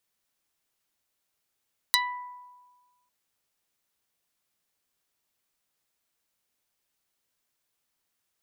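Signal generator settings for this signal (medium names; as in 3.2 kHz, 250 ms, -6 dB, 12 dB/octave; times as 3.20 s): plucked string B5, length 1.15 s, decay 1.41 s, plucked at 0.39, dark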